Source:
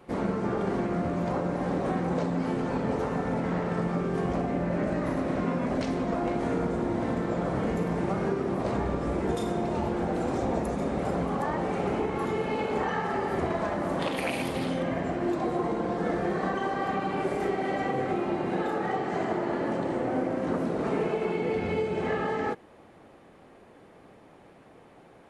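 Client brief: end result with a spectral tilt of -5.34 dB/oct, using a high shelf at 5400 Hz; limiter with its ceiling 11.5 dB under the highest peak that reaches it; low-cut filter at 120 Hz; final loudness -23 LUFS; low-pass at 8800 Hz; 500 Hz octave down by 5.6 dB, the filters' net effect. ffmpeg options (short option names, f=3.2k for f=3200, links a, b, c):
-af "highpass=120,lowpass=8.8k,equalizer=f=500:t=o:g=-7.5,highshelf=f=5.4k:g=5.5,volume=13dB,alimiter=limit=-14.5dB:level=0:latency=1"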